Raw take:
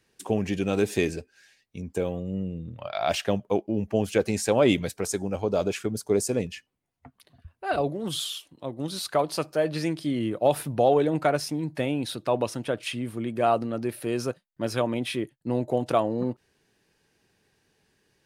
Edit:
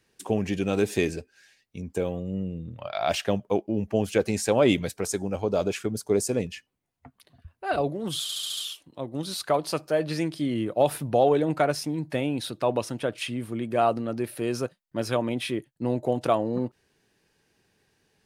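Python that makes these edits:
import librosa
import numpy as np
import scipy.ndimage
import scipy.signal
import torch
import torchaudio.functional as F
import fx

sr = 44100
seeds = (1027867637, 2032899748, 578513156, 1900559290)

y = fx.edit(x, sr, fx.stutter(start_s=8.22, slice_s=0.07, count=6), tone=tone)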